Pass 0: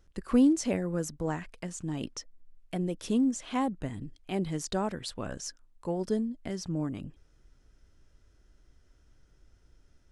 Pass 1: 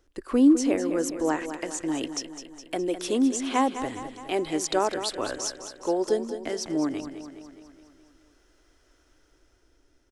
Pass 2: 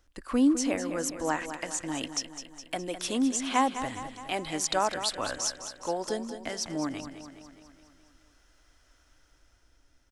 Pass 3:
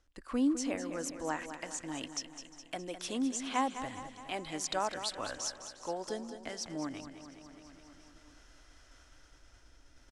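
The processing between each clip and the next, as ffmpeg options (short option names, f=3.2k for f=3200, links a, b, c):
-filter_complex "[0:a]lowshelf=f=240:t=q:w=3:g=-7,acrossover=split=490[a][b];[b]dynaudnorm=f=170:g=11:m=6.5dB[c];[a][c]amix=inputs=2:normalize=0,aecho=1:1:207|414|621|828|1035|1242|1449:0.299|0.173|0.1|0.0582|0.0338|0.0196|0.0114,volume=1.5dB"
-af "equalizer=f=380:t=o:w=0.77:g=-13,volume=1dB"
-af "lowpass=10k,aecho=1:1:353|706|1059|1412:0.0794|0.0421|0.0223|0.0118,areverse,acompressor=mode=upward:threshold=-40dB:ratio=2.5,areverse,volume=-6.5dB"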